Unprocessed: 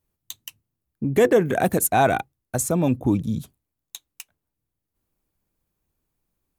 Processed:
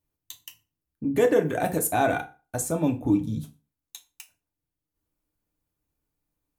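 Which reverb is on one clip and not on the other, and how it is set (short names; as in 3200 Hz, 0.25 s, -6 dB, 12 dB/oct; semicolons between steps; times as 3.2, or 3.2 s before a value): FDN reverb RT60 0.33 s, low-frequency decay 1×, high-frequency decay 0.8×, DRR 3.5 dB; gain -6 dB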